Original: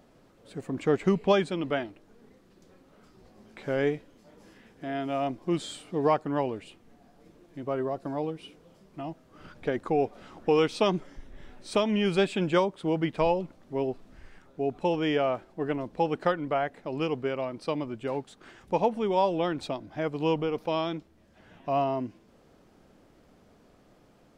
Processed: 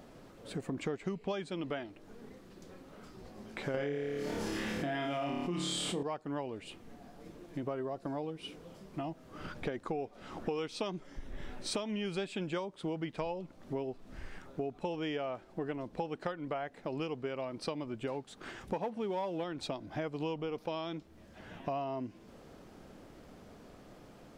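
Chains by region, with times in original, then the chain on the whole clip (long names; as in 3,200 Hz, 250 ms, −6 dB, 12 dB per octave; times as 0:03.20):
0:03.74–0:06.03: flutter between parallel walls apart 4.8 metres, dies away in 0.68 s + envelope flattener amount 70%
0:18.73–0:19.44: high-shelf EQ 4,600 Hz −7 dB + leveller curve on the samples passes 1 + high-pass filter 53 Hz
whole clip: dynamic equaliser 5,300 Hz, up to +3 dB, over −50 dBFS, Q 0.73; downward compressor 6 to 1, threshold −40 dBFS; level +5 dB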